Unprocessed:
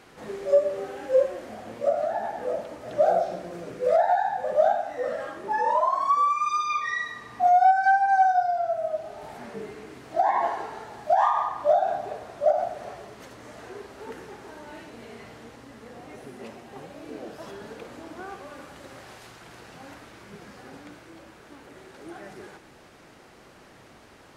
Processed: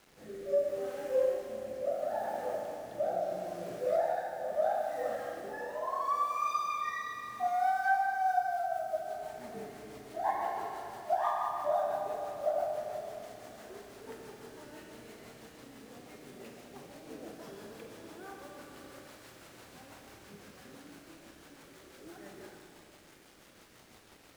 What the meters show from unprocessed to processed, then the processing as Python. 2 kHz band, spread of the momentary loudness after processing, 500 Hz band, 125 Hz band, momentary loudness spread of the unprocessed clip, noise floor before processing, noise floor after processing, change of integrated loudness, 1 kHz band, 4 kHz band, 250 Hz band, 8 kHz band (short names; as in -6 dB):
-8.0 dB, 21 LU, -8.0 dB, -7.0 dB, 22 LU, -52 dBFS, -58 dBFS, -9.5 dB, -10.0 dB, -6.5 dB, -6.5 dB, n/a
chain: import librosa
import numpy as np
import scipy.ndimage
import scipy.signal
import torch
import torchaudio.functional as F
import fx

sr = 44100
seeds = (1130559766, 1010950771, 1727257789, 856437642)

y = fx.quant_dither(x, sr, seeds[0], bits=8, dither='none')
y = fx.rotary_switch(y, sr, hz=0.75, then_hz=6.0, switch_at_s=7.87)
y = fx.rev_schroeder(y, sr, rt60_s=3.1, comb_ms=29, drr_db=2.0)
y = F.gain(torch.from_numpy(y), -7.5).numpy()